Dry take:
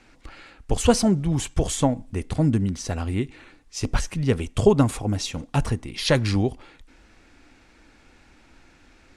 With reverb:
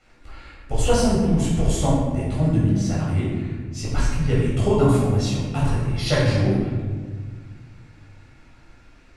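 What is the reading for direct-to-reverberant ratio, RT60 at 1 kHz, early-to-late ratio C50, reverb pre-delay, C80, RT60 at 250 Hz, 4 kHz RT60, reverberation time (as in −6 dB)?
−7.5 dB, 1.4 s, −0.5 dB, 12 ms, 2.0 dB, 2.5 s, 0.90 s, 1.6 s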